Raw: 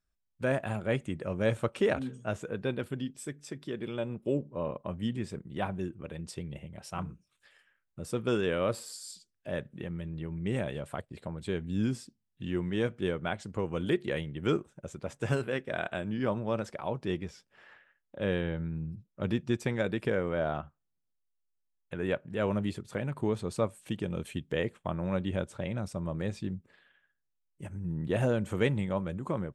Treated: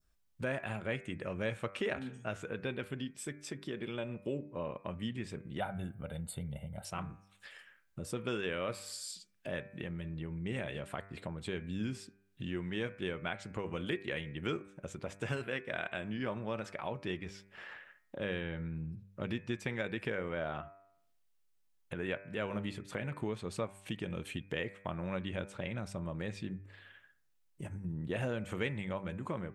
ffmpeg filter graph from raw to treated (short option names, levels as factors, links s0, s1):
-filter_complex "[0:a]asettb=1/sr,asplit=3[s0][s1][s2];[s0]atrim=end=5.604[s3];[s1]atrim=start=5.6:end=6.85,asetpts=PTS-STARTPTS,afade=t=in:d=0.004:c=qsin,afade=t=out:st=1.246:d=0.004:c=qsin,asuperstop=centerf=5500:order=4:qfactor=0.76,highshelf=f=3400:t=q:w=3:g=10,aecho=1:1:1.4:0.73,atrim=end_sample=55125[s4];[s2]atrim=start=6.846[s5];[s3][s4]acrossfade=d=0.004:c1=hsin:c2=qsin[s6];[s6][s5]acrossfade=d=0.004:c1=qsin:c2=hsin,bandreject=f=98.07:t=h:w=4,bandreject=f=196.14:t=h:w=4,bandreject=f=294.21:t=h:w=4,bandreject=f=392.28:t=h:w=4,bandreject=f=490.35:t=h:w=4,bandreject=f=588.42:t=h:w=4,bandreject=f=686.49:t=h:w=4,bandreject=f=784.56:t=h:w=4,bandreject=f=882.63:t=h:w=4,bandreject=f=980.7:t=h:w=4,bandreject=f=1078.77:t=h:w=4,bandreject=f=1176.84:t=h:w=4,bandreject=f=1274.91:t=h:w=4,bandreject=f=1372.98:t=h:w=4,bandreject=f=1471.05:t=h:w=4,bandreject=f=1569.12:t=h:w=4,bandreject=f=1667.19:t=h:w=4,bandreject=f=1765.26:t=h:w=4,bandreject=f=1863.33:t=h:w=4,bandreject=f=1961.4:t=h:w=4,bandreject=f=2059.47:t=h:w=4,bandreject=f=2157.54:t=h:w=4,bandreject=f=2255.61:t=h:w=4,bandreject=f=2353.68:t=h:w=4,bandreject=f=2451.75:t=h:w=4,bandreject=f=2549.82:t=h:w=4,adynamicequalizer=threshold=0.00282:dfrequency=2300:dqfactor=0.86:tfrequency=2300:tqfactor=0.86:attack=5:release=100:ratio=0.375:range=4:mode=boostabove:tftype=bell,acompressor=threshold=0.002:ratio=2,volume=2.37"